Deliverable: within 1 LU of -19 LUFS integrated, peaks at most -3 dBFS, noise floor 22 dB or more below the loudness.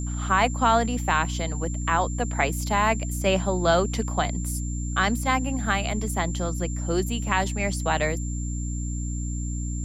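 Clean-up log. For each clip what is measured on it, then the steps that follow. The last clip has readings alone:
hum 60 Hz; harmonics up to 300 Hz; hum level -27 dBFS; steady tone 7300 Hz; tone level -38 dBFS; loudness -25.5 LUFS; peak -7.0 dBFS; loudness target -19.0 LUFS
-> de-hum 60 Hz, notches 5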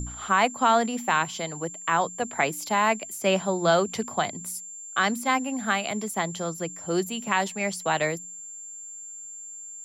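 hum none; steady tone 7300 Hz; tone level -38 dBFS
-> notch 7300 Hz, Q 30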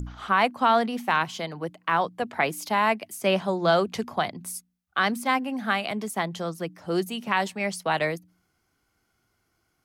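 steady tone none; loudness -26.0 LUFS; peak -8.5 dBFS; loudness target -19.0 LUFS
-> gain +7 dB; limiter -3 dBFS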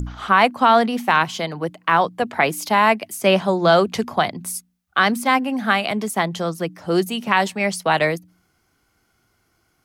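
loudness -19.5 LUFS; peak -3.0 dBFS; noise floor -66 dBFS

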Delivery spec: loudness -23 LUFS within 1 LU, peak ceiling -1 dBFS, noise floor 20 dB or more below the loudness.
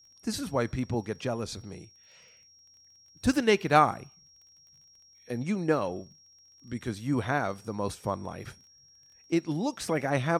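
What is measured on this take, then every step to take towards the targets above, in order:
ticks 29/s; steady tone 5600 Hz; tone level -56 dBFS; loudness -29.5 LUFS; peak -8.0 dBFS; loudness target -23.0 LUFS
-> de-click; notch 5600 Hz, Q 30; gain +6.5 dB

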